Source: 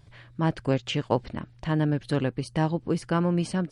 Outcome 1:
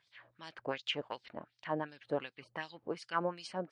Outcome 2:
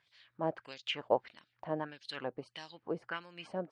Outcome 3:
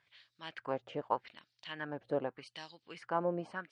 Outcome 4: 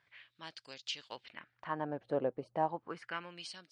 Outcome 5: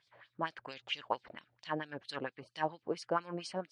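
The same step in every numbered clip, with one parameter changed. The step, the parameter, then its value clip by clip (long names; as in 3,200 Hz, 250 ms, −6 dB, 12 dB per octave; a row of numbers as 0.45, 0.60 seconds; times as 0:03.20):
auto-filter band-pass, speed: 2.7, 1.6, 0.83, 0.33, 4.4 Hertz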